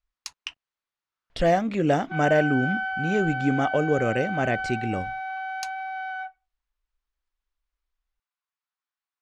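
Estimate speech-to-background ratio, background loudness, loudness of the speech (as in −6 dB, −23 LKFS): 5.0 dB, −30.0 LKFS, −25.0 LKFS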